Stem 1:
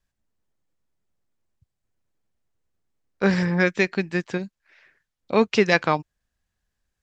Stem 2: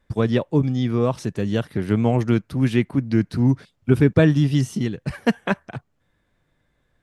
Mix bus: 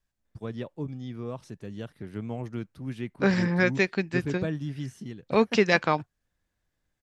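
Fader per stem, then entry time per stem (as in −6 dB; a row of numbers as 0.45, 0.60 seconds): −3.0, −15.5 decibels; 0.00, 0.25 seconds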